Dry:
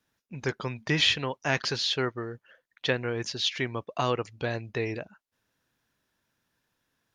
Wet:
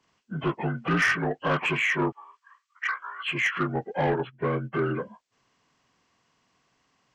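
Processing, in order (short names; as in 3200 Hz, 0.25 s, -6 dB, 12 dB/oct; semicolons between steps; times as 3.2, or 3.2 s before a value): inharmonic rescaling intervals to 78%; 2.12–3.28 HPF 1300 Hz 24 dB/oct; 4.12–4.73 gate -39 dBFS, range -14 dB; in parallel at -3 dB: compressor, threshold -37 dBFS, peak gain reduction 15.5 dB; on the sum: soft clip -22 dBFS, distortion -14 dB; gain +4.5 dB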